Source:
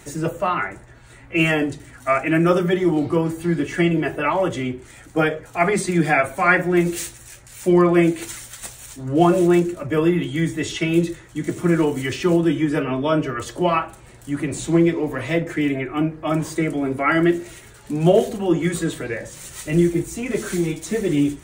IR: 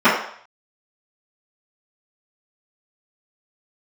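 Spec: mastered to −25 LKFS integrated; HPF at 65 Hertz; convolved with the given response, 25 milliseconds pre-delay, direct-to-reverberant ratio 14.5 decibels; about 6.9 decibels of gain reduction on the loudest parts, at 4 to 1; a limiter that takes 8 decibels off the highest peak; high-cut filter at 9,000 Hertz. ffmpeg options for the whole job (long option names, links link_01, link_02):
-filter_complex "[0:a]highpass=65,lowpass=9000,acompressor=threshold=-19dB:ratio=4,alimiter=limit=-17.5dB:level=0:latency=1,asplit=2[link_01][link_02];[1:a]atrim=start_sample=2205,adelay=25[link_03];[link_02][link_03]afir=irnorm=-1:irlink=0,volume=-41dB[link_04];[link_01][link_04]amix=inputs=2:normalize=0,volume=2dB"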